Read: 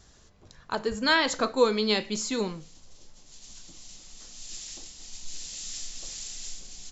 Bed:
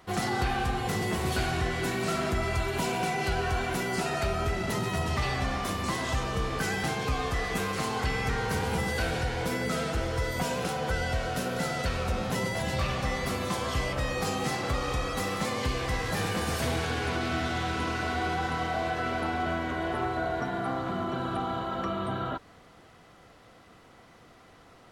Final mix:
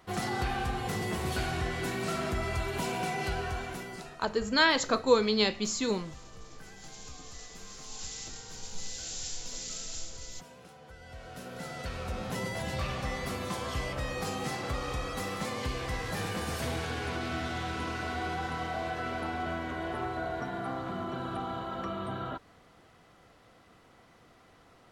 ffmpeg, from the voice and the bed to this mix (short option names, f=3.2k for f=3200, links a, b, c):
-filter_complex "[0:a]adelay=3500,volume=-1dB[a];[1:a]volume=13.5dB,afade=t=out:st=3.24:d=0.95:silence=0.125893,afade=t=in:st=10.99:d=1.48:silence=0.141254[b];[a][b]amix=inputs=2:normalize=0"